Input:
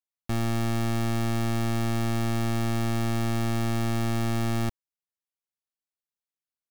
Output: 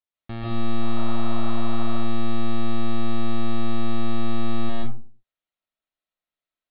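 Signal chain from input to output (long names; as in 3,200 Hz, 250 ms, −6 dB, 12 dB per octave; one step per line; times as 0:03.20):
brickwall limiter −30.5 dBFS, peak gain reduction 5 dB
Butterworth low-pass 4,200 Hz 72 dB per octave
0:00.80–0:01.87: noise in a band 620–1,300 Hz −46 dBFS
convolution reverb RT60 0.40 s, pre-delay 105 ms, DRR −5.5 dB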